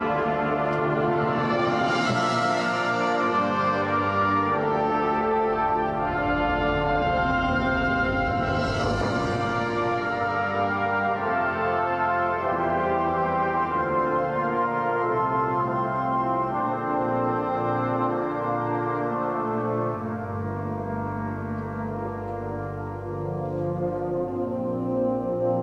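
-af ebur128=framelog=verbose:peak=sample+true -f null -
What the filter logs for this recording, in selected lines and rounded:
Integrated loudness:
  I:         -24.9 LUFS
  Threshold: -34.9 LUFS
Loudness range:
  LRA:         6.3 LU
  Threshold: -44.9 LUFS
  LRA low:   -29.5 LUFS
  LRA high:  -23.2 LUFS
Sample peak:
  Peak:      -12.0 dBFS
True peak:
  Peak:      -12.0 dBFS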